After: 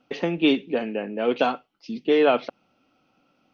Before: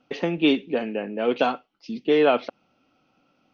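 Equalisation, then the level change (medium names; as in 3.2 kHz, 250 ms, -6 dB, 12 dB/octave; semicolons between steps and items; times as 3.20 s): hum notches 50/100/150 Hz; 0.0 dB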